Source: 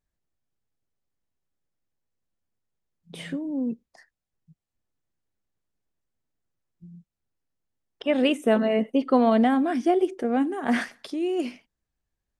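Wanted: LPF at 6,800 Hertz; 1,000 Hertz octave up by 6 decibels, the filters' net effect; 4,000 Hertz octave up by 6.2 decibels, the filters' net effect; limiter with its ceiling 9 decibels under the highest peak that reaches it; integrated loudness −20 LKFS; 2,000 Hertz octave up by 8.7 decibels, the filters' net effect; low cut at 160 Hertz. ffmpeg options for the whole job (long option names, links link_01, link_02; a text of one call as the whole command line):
ffmpeg -i in.wav -af "highpass=160,lowpass=6800,equalizer=frequency=1000:width_type=o:gain=7.5,equalizer=frequency=2000:width_type=o:gain=7.5,equalizer=frequency=4000:width_type=o:gain=4.5,volume=5dB,alimiter=limit=-7.5dB:level=0:latency=1" out.wav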